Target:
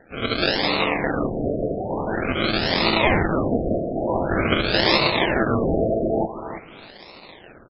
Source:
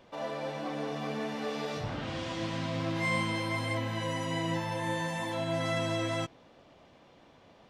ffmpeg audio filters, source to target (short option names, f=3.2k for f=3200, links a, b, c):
-filter_complex "[0:a]highpass=270,acrossover=split=5800[a][b];[a]dynaudnorm=f=200:g=3:m=7dB[c];[c][b]amix=inputs=2:normalize=0,volume=21dB,asoftclip=hard,volume=-21dB,asplit=3[d][e][f];[e]asetrate=29433,aresample=44100,atempo=1.49831,volume=-2dB[g];[f]asetrate=52444,aresample=44100,atempo=0.840896,volume=-3dB[h];[d][g][h]amix=inputs=3:normalize=0,acrusher=samples=38:mix=1:aa=0.000001:lfo=1:lforange=22.8:lforate=0.94,crystalizer=i=8:c=0,asplit=2[i][j];[j]aecho=0:1:327|654:0.237|0.0403[k];[i][k]amix=inputs=2:normalize=0,afftfilt=real='re*lt(b*sr/1024,690*pow(5500/690,0.5+0.5*sin(2*PI*0.46*pts/sr)))':imag='im*lt(b*sr/1024,690*pow(5500/690,0.5+0.5*sin(2*PI*0.46*pts/sr)))':win_size=1024:overlap=0.75,volume=2dB"